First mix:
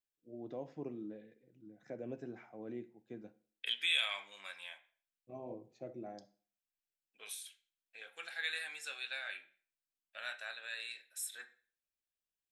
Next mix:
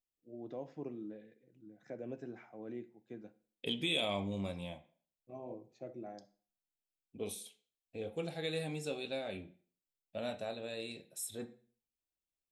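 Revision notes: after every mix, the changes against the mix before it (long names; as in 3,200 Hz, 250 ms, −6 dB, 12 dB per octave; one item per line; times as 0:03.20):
second voice: remove high-pass with resonance 1,600 Hz, resonance Q 4.7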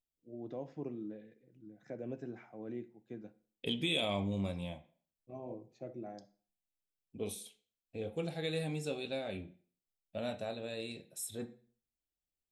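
master: add low-shelf EQ 200 Hz +6 dB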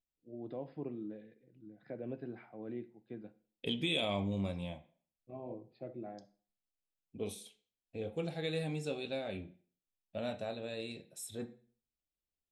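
first voice: add linear-phase brick-wall low-pass 5,100 Hz
second voice: add high-shelf EQ 10,000 Hz −9.5 dB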